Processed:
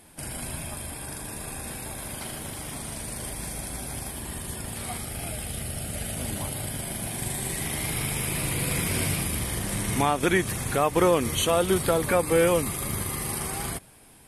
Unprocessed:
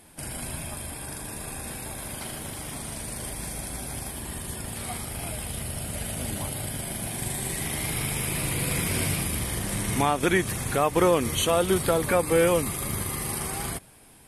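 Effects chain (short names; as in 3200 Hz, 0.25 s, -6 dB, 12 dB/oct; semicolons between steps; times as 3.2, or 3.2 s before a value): 4.98–6.17 notch 1000 Hz, Q 5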